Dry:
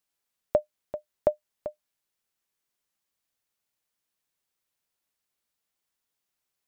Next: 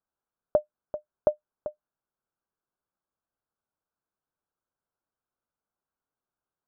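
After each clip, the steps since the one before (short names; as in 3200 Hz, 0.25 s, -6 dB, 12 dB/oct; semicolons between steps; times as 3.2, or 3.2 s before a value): steep low-pass 1600 Hz 96 dB/oct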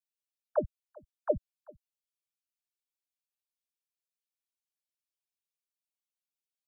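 per-bin expansion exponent 2; bell 700 Hz -9.5 dB 1 oct; dispersion lows, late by 0.102 s, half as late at 360 Hz; gain +5 dB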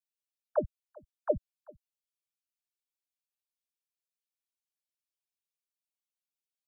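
nothing audible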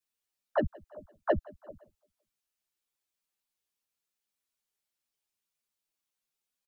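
soft clip -22 dBFS, distortion -11 dB; feedback echo 0.171 s, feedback 50%, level -24 dB; ensemble effect; gain +9 dB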